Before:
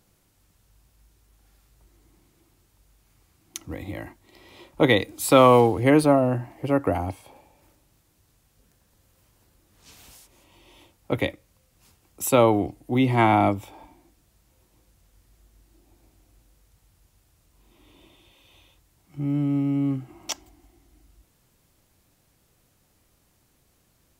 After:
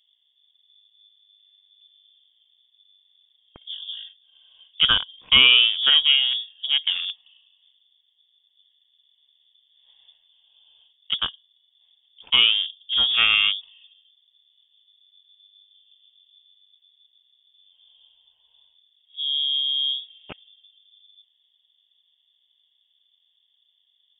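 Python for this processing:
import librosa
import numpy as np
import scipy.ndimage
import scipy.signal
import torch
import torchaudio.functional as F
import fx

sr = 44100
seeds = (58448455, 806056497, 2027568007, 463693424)

y = fx.wiener(x, sr, points=41)
y = fx.freq_invert(y, sr, carrier_hz=3500)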